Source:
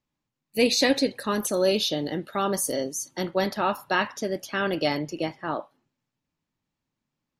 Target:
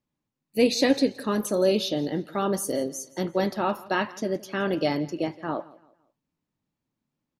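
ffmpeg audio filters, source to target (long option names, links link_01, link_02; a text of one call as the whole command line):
ffmpeg -i in.wav -af "equalizer=frequency=250:width=0.35:gain=6.5,flanger=delay=0.3:depth=4.7:regen=-85:speed=1.2:shape=triangular,aecho=1:1:169|338|507:0.0891|0.0312|0.0109" out.wav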